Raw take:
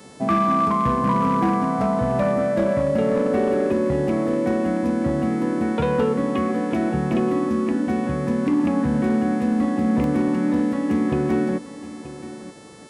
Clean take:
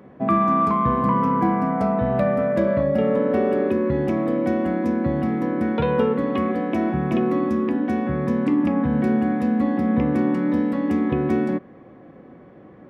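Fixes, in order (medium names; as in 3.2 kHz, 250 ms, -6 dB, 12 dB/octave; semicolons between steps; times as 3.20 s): clip repair -13.5 dBFS; de-hum 439.5 Hz, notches 24; interpolate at 10.04 s, 1.7 ms; inverse comb 929 ms -15 dB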